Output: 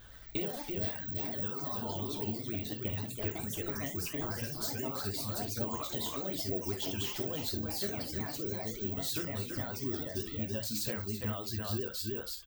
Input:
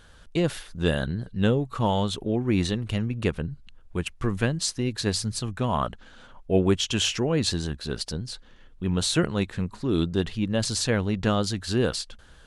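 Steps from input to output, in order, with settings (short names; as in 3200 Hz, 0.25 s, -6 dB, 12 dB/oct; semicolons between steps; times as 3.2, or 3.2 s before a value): echoes that change speed 0.115 s, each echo +3 st, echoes 3; echo 0.328 s -6.5 dB; careless resampling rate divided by 2×, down filtered, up zero stuff; 0.82–1.79 high shelf 4400 Hz +5.5 dB; compressor 6:1, threshold -26 dBFS, peak gain reduction 17 dB; reverb removal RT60 1.6 s; 10.32–10.91 notch 1200 Hz, Q 6; reverb, pre-delay 3 ms, DRR 3 dB; vibrato 10 Hz 67 cents; gain -4.5 dB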